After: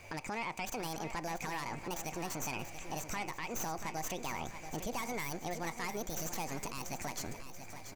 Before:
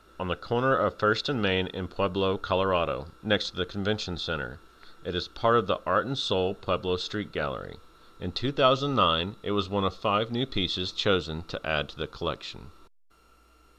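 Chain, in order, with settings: tracing distortion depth 0.25 ms; compression 5:1, threshold -37 dBFS, peak gain reduction 17.5 dB; peak limiter -33 dBFS, peak gain reduction 9.5 dB; feedback delay 1186 ms, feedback 50%, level -10 dB; on a send at -22 dB: reverberation RT60 4.6 s, pre-delay 95 ms; on the sum: speed mistake 45 rpm record played at 78 rpm; trim +3.5 dB

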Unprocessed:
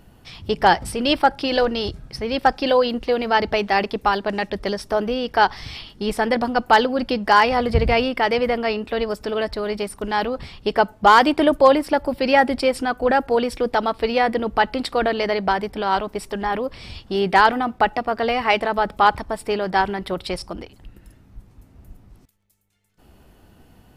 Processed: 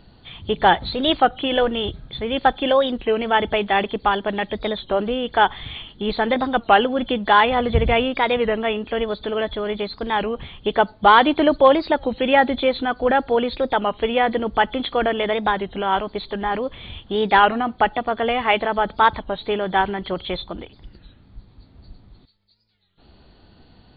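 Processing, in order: knee-point frequency compression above 3.1 kHz 4:1; warped record 33 1/3 rpm, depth 160 cents

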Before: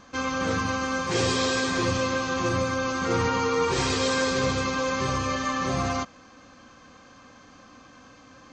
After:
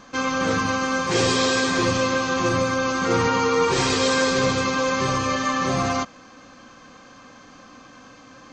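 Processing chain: peaking EQ 73 Hz -12.5 dB 0.54 oct; trim +4.5 dB

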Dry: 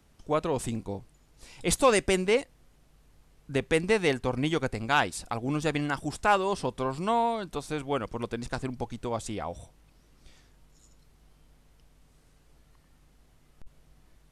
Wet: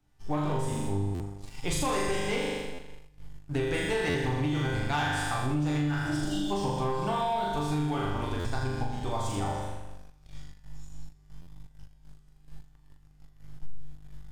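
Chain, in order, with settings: graphic EQ with 31 bands 200 Hz -4 dB, 500 Hz -7 dB, 800 Hz +7 dB, 10 kHz -5 dB; spectral replace 6.09–6.48 s, 280–2800 Hz before; chord resonator G2 sus4, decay 0.34 s; flutter echo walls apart 6.9 m, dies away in 1.2 s; waveshaping leveller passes 2; bass shelf 130 Hz +11 dB; compression, threshold -31 dBFS, peak gain reduction 8.5 dB; buffer glitch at 1.14/2.73/4.09/8.39/11.41 s, samples 512, times 4; trim +5.5 dB

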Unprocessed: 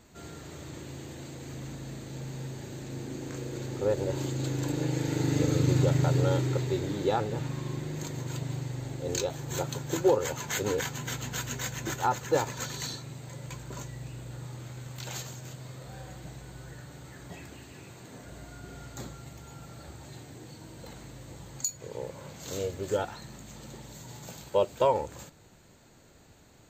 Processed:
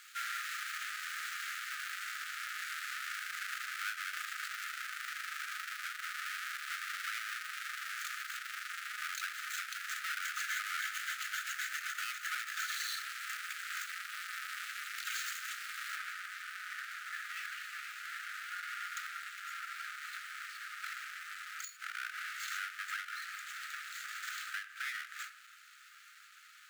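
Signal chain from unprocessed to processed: square wave that keeps the level; compression 12:1, threshold -35 dBFS, peak gain reduction 19.5 dB; treble shelf 3.1 kHz -3.5 dB, from 15.96 s -10 dB; reverberation RT60 1.0 s, pre-delay 36 ms, DRR 18 dB; dynamic bell 1.7 kHz, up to +6 dB, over -59 dBFS, Q 1.5; brick-wall FIR high-pass 1.2 kHz; peak limiter -36 dBFS, peak gain reduction 11 dB; endings held to a fixed fall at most 150 dB/s; trim +8 dB

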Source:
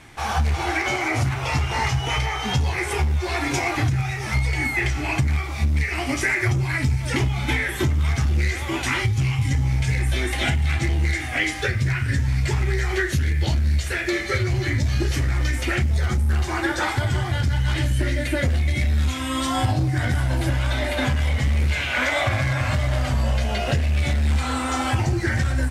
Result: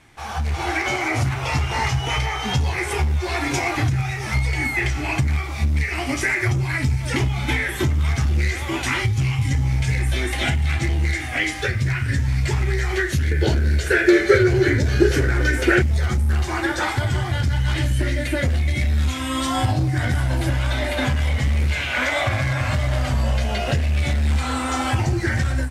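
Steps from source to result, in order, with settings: level rider gain up to 8 dB; 13.31–15.82 s: small resonant body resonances 420/1500 Hz, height 16 dB, ringing for 25 ms; trim -6.5 dB

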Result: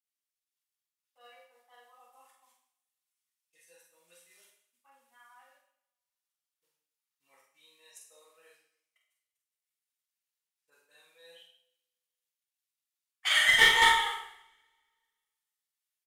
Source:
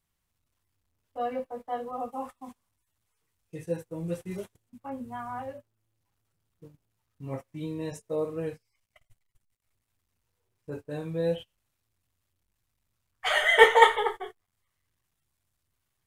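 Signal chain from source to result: Bessel high-pass 2.7 kHz, order 2; gate -45 dBFS, range -13 dB; level rider gain up to 3 dB; one-sided clip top -21 dBFS; doubling 46 ms -5 dB; two-slope reverb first 0.67 s, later 1.8 s, from -26 dB, DRR 0 dB

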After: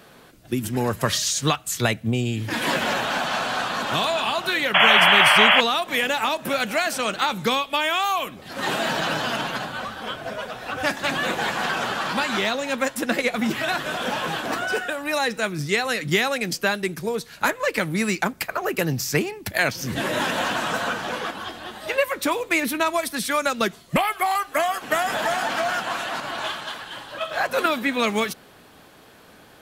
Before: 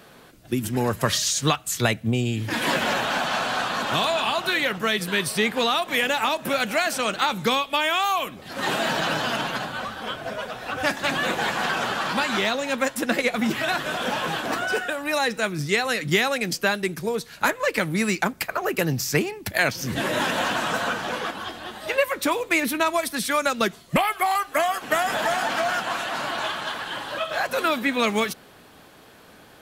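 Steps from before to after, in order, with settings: 4.74–5.61 s: painted sound noise 560–3400 Hz -15 dBFS; 26.20–27.66 s: three bands expanded up and down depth 100%

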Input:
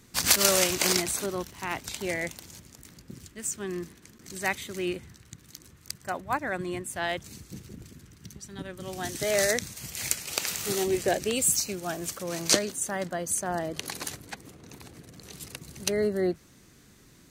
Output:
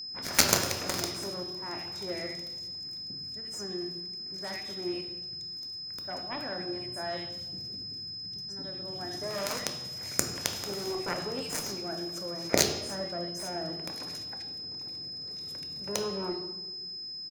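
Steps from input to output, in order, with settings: bands offset in time lows, highs 80 ms, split 2 kHz; Chebyshev shaper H 2 -9 dB, 7 -15 dB, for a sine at -2.5 dBFS; reverberation RT60 1.1 s, pre-delay 3 ms, DRR 4.5 dB; whistle 5.1 kHz -36 dBFS; trim -1.5 dB

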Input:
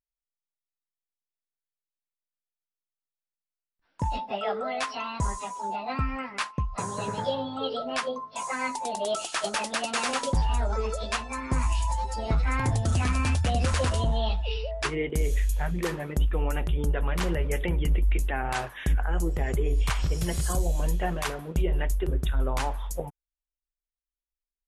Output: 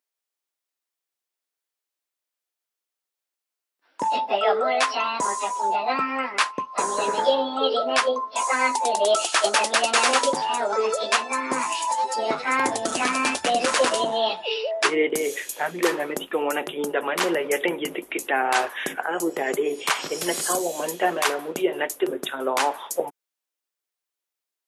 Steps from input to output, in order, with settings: high-pass 300 Hz 24 dB/octave; trim +9 dB

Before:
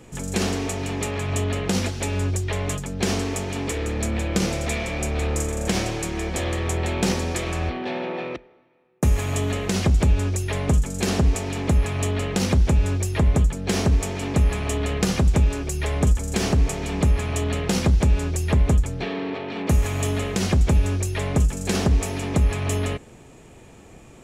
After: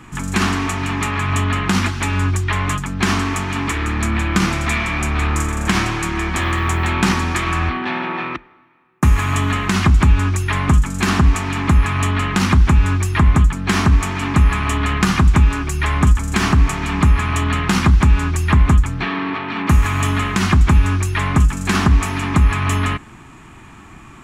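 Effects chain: FFT filter 330 Hz 0 dB, 500 Hz -16 dB, 1.1 kHz +10 dB, 5.4 kHz -4 dB; 6.40–6.89 s: added noise violet -62 dBFS; trim +6 dB

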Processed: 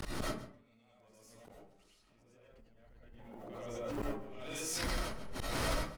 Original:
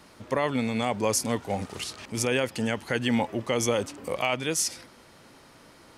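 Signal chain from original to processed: wind noise 82 Hz -38 dBFS; 1.97–4.12 s: low-pass 1.5 kHz 6 dB/octave; compression 4:1, threshold -42 dBFS, peak gain reduction 19.5 dB; added noise white -75 dBFS; valve stage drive 33 dB, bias 0.65; inverted gate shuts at -42 dBFS, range -40 dB; echo from a far wall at 23 m, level -14 dB; algorithmic reverb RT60 0.41 s, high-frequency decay 0.5×, pre-delay 60 ms, DRR -6 dB; swell ahead of each attack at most 21 dB/s; trim +13 dB

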